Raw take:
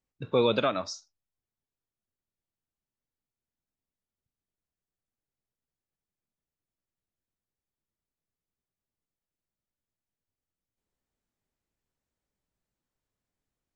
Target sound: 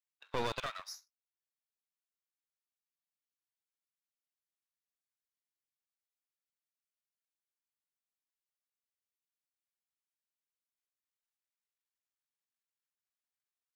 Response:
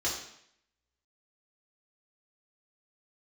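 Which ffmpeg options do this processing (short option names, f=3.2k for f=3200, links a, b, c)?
-filter_complex "[0:a]aeval=exprs='if(lt(val(0),0),0.251*val(0),val(0))':c=same,equalizer=f=89:w=1.5:g=-13,asoftclip=type=hard:threshold=-22dB,acrossover=split=1000[a][b];[a]acrusher=bits=3:mix=0:aa=0.5[c];[c][b]amix=inputs=2:normalize=0,volume=-4dB"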